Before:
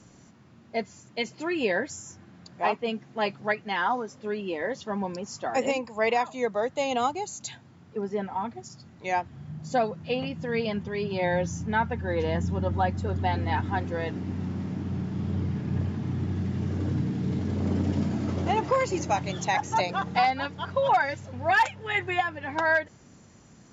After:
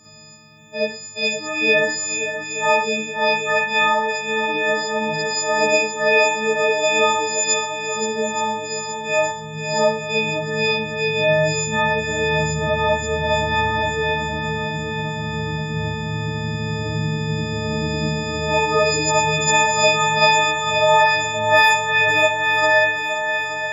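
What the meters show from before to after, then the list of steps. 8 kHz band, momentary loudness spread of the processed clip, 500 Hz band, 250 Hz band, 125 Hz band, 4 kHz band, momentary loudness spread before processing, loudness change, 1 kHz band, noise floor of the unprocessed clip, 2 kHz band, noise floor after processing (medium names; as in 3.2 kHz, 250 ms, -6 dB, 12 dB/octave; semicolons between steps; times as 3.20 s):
no reading, 10 LU, +9.5 dB, +2.5 dB, +4.0 dB, +16.0 dB, 9 LU, +9.5 dB, +7.5 dB, -54 dBFS, +12.5 dB, -31 dBFS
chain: partials quantised in pitch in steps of 6 st; shuffle delay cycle 875 ms, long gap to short 1.5:1, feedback 49%, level -9.5 dB; Schroeder reverb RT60 0.39 s, DRR -6.5 dB; trim -2.5 dB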